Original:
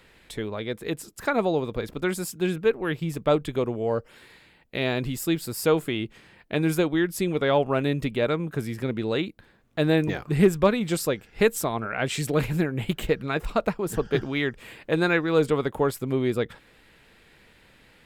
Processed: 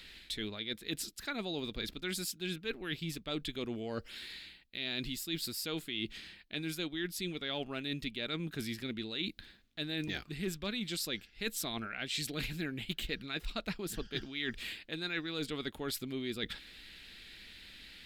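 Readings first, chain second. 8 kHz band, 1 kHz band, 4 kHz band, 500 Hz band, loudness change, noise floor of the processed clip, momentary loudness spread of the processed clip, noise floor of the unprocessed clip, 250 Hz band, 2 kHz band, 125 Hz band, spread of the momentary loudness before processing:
-6.5 dB, -17.5 dB, -1.0 dB, -18.5 dB, -12.5 dB, -59 dBFS, 9 LU, -57 dBFS, -13.5 dB, -9.5 dB, -15.5 dB, 9 LU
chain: ten-band graphic EQ 125 Hz -11 dB, 500 Hz -11 dB, 1 kHz -11 dB, 4 kHz +10 dB, 8 kHz -3 dB; reverse; compression 6:1, threshold -38 dBFS, peak gain reduction 17.5 dB; reverse; trim +3 dB

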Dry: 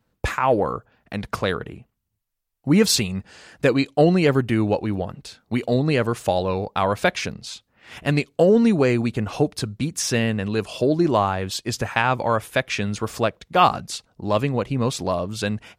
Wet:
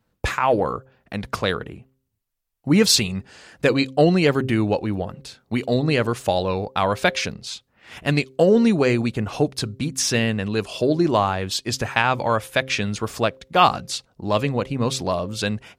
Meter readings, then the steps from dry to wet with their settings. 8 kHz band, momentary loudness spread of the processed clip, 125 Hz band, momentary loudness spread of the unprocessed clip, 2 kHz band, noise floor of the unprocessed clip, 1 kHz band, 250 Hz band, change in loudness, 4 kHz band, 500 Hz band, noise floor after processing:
+2.0 dB, 12 LU, -0.5 dB, 13 LU, +1.5 dB, -75 dBFS, +0.5 dB, 0.0 dB, +0.5 dB, +3.5 dB, 0.0 dB, -73 dBFS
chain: de-hum 131.9 Hz, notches 4; dynamic bell 4.1 kHz, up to +4 dB, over -36 dBFS, Q 0.74

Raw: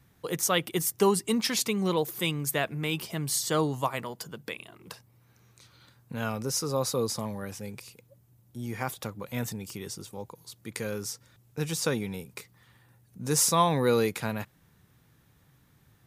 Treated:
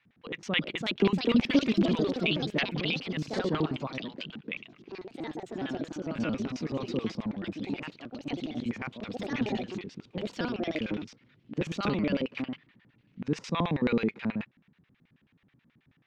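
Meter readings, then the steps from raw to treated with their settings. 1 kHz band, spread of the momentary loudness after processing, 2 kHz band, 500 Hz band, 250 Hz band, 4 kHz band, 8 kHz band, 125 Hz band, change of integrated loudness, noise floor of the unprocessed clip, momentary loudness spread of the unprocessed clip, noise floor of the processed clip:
-6.5 dB, 13 LU, +1.0 dB, -3.0 dB, +4.0 dB, -1.5 dB, -22.5 dB, -1.5 dB, -2.5 dB, -63 dBFS, 19 LU, -70 dBFS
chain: LFO band-pass square 9.3 Hz 230–2500 Hz; ever faster or slower copies 414 ms, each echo +3 st, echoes 3; distance through air 180 m; trim +7.5 dB

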